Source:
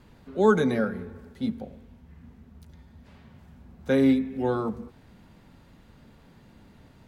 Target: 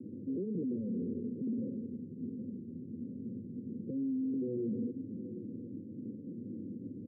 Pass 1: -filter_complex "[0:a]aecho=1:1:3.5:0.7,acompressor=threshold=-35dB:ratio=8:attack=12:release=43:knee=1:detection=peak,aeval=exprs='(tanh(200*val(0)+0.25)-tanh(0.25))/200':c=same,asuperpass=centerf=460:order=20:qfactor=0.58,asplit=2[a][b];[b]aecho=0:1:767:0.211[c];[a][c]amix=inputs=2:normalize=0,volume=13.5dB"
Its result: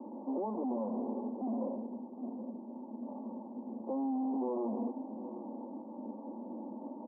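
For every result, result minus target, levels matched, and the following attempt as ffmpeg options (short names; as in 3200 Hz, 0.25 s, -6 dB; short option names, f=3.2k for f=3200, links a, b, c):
compressor: peak gain reduction +9 dB; 500 Hz band +3.5 dB
-filter_complex "[0:a]aecho=1:1:3.5:0.7,acompressor=threshold=-24.5dB:ratio=8:attack=12:release=43:knee=1:detection=peak,aeval=exprs='(tanh(200*val(0)+0.25)-tanh(0.25))/200':c=same,asuperpass=centerf=460:order=20:qfactor=0.58,asplit=2[a][b];[b]aecho=0:1:767:0.211[c];[a][c]amix=inputs=2:normalize=0,volume=13.5dB"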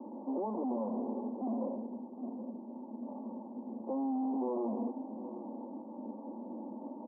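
500 Hz band +3.5 dB
-filter_complex "[0:a]aecho=1:1:3.5:0.7,acompressor=threshold=-24.5dB:ratio=8:attack=12:release=43:knee=1:detection=peak,aeval=exprs='(tanh(200*val(0)+0.25)-tanh(0.25))/200':c=same,asuperpass=centerf=220:order=20:qfactor=0.58,asplit=2[a][b];[b]aecho=0:1:767:0.211[c];[a][c]amix=inputs=2:normalize=0,volume=13.5dB"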